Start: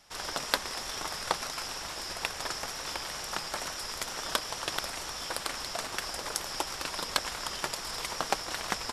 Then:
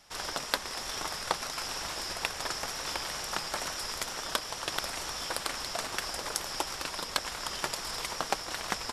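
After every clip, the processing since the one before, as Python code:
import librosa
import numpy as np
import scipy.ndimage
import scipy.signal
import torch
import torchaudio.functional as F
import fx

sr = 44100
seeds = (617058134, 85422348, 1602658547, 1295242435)

y = fx.rider(x, sr, range_db=10, speed_s=0.5)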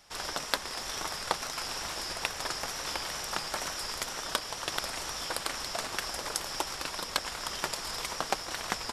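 y = fx.wow_flutter(x, sr, seeds[0], rate_hz=2.1, depth_cents=26.0)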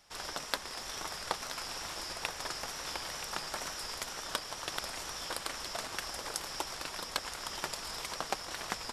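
y = x + 10.0 ** (-11.0 / 20.0) * np.pad(x, (int(976 * sr / 1000.0), 0))[:len(x)]
y = y * 10.0 ** (-4.5 / 20.0)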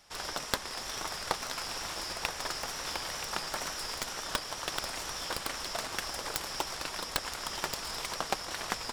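y = fx.tracing_dist(x, sr, depth_ms=0.11)
y = y * 10.0 ** (3.0 / 20.0)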